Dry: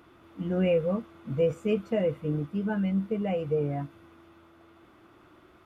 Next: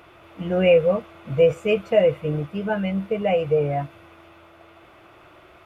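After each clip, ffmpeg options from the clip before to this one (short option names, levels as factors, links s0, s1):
-af "equalizer=f=250:t=o:w=0.67:g=-11,equalizer=f=630:t=o:w=0.67:g=7,equalizer=f=2500:t=o:w=0.67:g=7,volume=2.11"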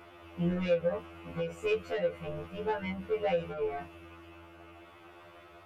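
-af "acompressor=threshold=0.1:ratio=10,asoftclip=type=tanh:threshold=0.0891,afftfilt=real='re*2*eq(mod(b,4),0)':imag='im*2*eq(mod(b,4),0)':win_size=2048:overlap=0.75,volume=0.841"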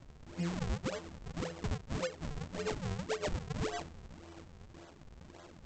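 -af "acompressor=threshold=0.0224:ratio=6,aresample=16000,acrusher=samples=31:mix=1:aa=0.000001:lfo=1:lforange=49.6:lforate=1.8,aresample=44100"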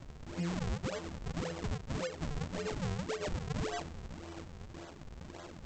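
-af "alimiter=level_in=3.55:limit=0.0631:level=0:latency=1:release=105,volume=0.282,volume=1.88"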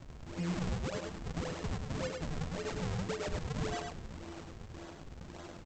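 -af "aecho=1:1:104:0.596,volume=0.891"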